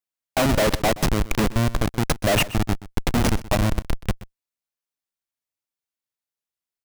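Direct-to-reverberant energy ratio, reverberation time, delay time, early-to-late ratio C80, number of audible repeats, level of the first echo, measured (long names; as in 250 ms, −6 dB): no reverb audible, no reverb audible, 126 ms, no reverb audible, 1, −17.5 dB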